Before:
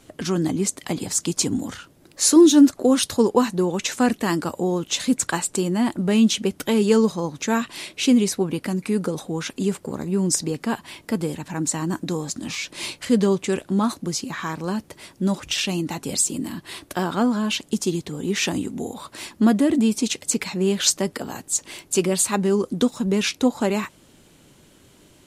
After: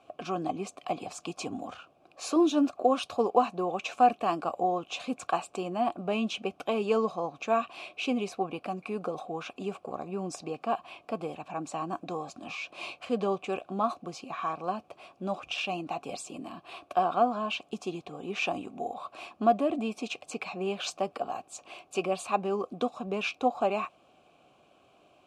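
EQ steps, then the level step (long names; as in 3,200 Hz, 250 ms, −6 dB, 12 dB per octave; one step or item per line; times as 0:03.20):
formant filter a
low-shelf EQ 130 Hz +10.5 dB
+7.0 dB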